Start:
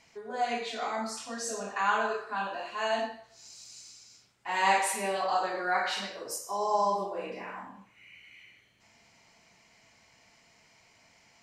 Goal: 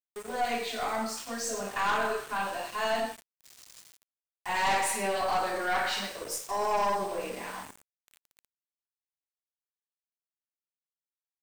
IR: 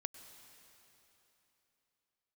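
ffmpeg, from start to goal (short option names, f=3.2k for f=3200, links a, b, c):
-af "aeval=exprs='val(0)+0.00178*sin(2*PI*8400*n/s)':c=same,aeval=exprs='val(0)*gte(abs(val(0)),0.0075)':c=same,aeval=exprs='(tanh(20*val(0)+0.35)-tanh(0.35))/20':c=same,volume=3.5dB"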